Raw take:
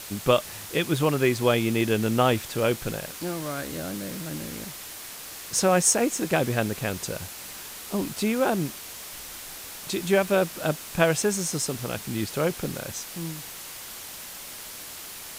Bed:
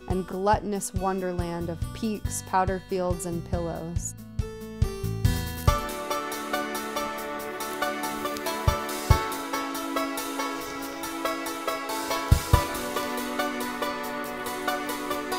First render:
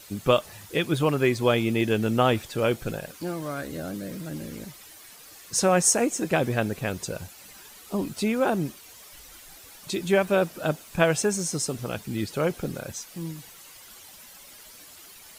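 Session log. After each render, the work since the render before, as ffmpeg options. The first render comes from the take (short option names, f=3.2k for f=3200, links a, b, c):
-af "afftdn=nr=11:nf=-40"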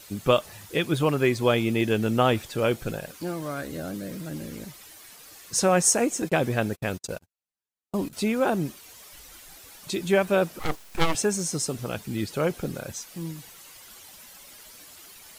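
-filter_complex "[0:a]asettb=1/sr,asplit=3[a][b][c];[a]atrim=end=6.224[d];[b]atrim=start=6.22:end=8.13,asetpts=PTS-STARTPTS,afade=t=in:d=0.004:c=qsin,afade=t=out:st=1.906:d=0.004:c=qsin,agate=range=-50dB:threshold=-34dB:ratio=16:release=100:detection=peak[e];[c]atrim=start=8.126[f];[d][e]acrossfade=d=0.004:c1=hsin:c2=qsin[g];[g][f]acrossfade=d=0.004:c1=qsin:c2=hsin,asettb=1/sr,asplit=3[h][i][j];[h]atrim=end=10.594[k];[i]atrim=start=10.59:end=11.15,asetpts=PTS-STARTPTS,afade=t=in:d=0.004:c=qsin,afade=t=out:st=0.556:d=0.004:c=qsin,aeval=exprs='abs(val(0))':c=same[l];[j]atrim=start=11.146[m];[k][l]acrossfade=d=0.004:c1=hsin:c2=qsin[n];[n][m]acrossfade=d=0.004:c1=qsin:c2=hsin"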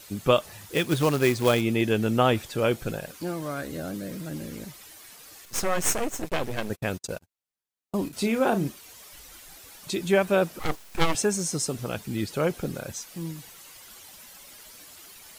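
-filter_complex "[0:a]asettb=1/sr,asplit=3[a][b][c];[a]atrim=end=0.714[d];[b]atrim=start=0.71:end=1.61,asetpts=PTS-STARTPTS,afade=t=in:d=0.004:c=qsin,afade=t=out:st=0.896:d=0.004:c=qsin,acrusher=bits=3:mode=log:mix=0:aa=0.000001[e];[c]atrim=start=1.606[f];[d][e]acrossfade=d=0.004:c1=hsin:c2=qsin[g];[g][f]acrossfade=d=0.004:c1=qsin:c2=hsin,asettb=1/sr,asplit=3[h][i][j];[h]atrim=end=5.454[k];[i]atrim=start=5.45:end=6.7,asetpts=PTS-STARTPTS,afade=t=in:d=0.004:c=qsin,afade=t=out:st=1.246:d=0.004:c=qsin,aeval=exprs='max(val(0),0)':c=same[l];[j]atrim=start=6.696[m];[k][l]acrossfade=d=0.004:c1=hsin:c2=qsin[n];[n][m]acrossfade=d=0.004:c1=qsin:c2=hsin,asettb=1/sr,asplit=3[o][p][q];[o]atrim=end=8.054[r];[p]atrim=start=8.05:end=8.68,asetpts=PTS-STARTPTS,afade=t=in:d=0.004:c=qsin,afade=t=out:st=0.626:d=0.004:c=qsin,asplit=2[s][t];[t]adelay=35,volume=-8dB[u];[s][u]amix=inputs=2:normalize=0,atrim=end_sample=27783[v];[q]atrim=start=8.676[w];[r][v]acrossfade=d=0.004:c1=hsin:c2=qsin[x];[x][w]acrossfade=d=0.004:c1=qsin:c2=hsin"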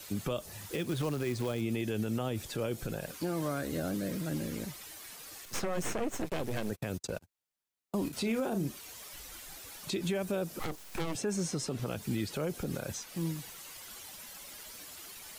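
-filter_complex "[0:a]acrossover=split=85|540|4400[a][b][c][d];[a]acompressor=threshold=-35dB:ratio=4[e];[b]acompressor=threshold=-26dB:ratio=4[f];[c]acompressor=threshold=-36dB:ratio=4[g];[d]acompressor=threshold=-43dB:ratio=4[h];[e][f][g][h]amix=inputs=4:normalize=0,alimiter=limit=-24dB:level=0:latency=1:release=85"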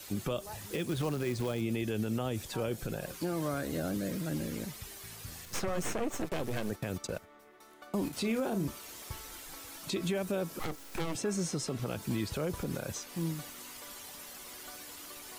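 -filter_complex "[1:a]volume=-24.5dB[a];[0:a][a]amix=inputs=2:normalize=0"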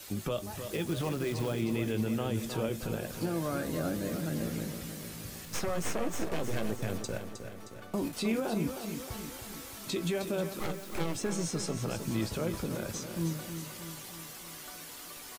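-filter_complex "[0:a]asplit=2[a][b];[b]adelay=18,volume=-11dB[c];[a][c]amix=inputs=2:normalize=0,asplit=2[d][e];[e]aecho=0:1:312|624|936|1248|1560|1872|2184:0.376|0.218|0.126|0.0733|0.0425|0.0247|0.0143[f];[d][f]amix=inputs=2:normalize=0"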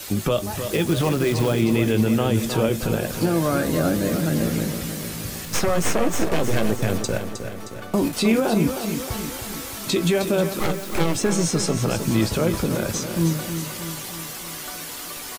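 -af "volume=12dB"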